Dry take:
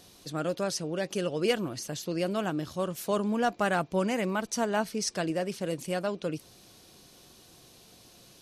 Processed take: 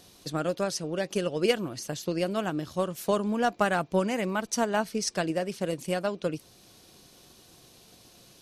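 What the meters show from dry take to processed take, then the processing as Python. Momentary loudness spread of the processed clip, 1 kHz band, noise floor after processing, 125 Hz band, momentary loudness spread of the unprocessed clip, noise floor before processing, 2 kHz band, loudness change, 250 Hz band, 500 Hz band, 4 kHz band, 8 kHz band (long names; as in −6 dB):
6 LU, +1.5 dB, −56 dBFS, +1.0 dB, 7 LU, −56 dBFS, +1.5 dB, +1.5 dB, +1.0 dB, +2.0 dB, +1.0 dB, +1.0 dB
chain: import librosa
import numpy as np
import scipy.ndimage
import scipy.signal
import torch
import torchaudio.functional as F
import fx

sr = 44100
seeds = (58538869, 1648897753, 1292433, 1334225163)

y = fx.transient(x, sr, attack_db=5, sustain_db=-1)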